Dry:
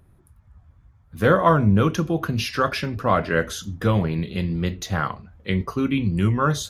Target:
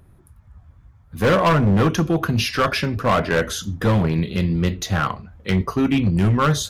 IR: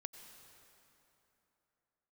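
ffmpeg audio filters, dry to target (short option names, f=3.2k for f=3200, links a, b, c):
-af "volume=17dB,asoftclip=hard,volume=-17dB,volume=4.5dB"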